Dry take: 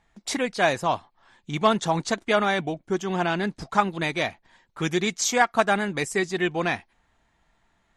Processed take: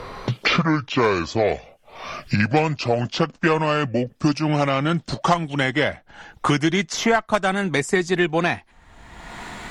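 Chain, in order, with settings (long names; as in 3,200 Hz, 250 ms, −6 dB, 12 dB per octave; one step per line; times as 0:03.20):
gliding playback speed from 58% → 106%
harmonic generator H 6 −25 dB, 8 −31 dB, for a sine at −6 dBFS
multiband upward and downward compressor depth 100%
level +3.5 dB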